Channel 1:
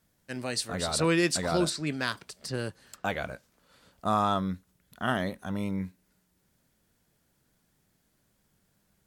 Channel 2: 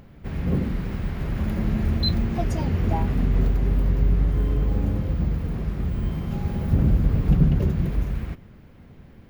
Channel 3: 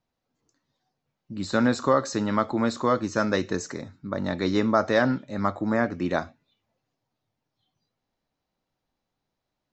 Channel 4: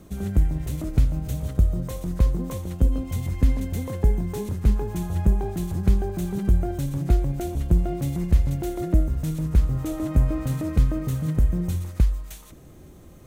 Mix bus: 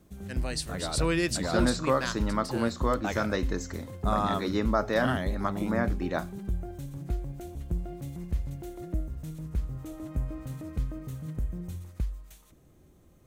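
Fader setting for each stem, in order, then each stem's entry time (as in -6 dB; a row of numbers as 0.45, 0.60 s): -2.5 dB, off, -5.0 dB, -12.0 dB; 0.00 s, off, 0.00 s, 0.00 s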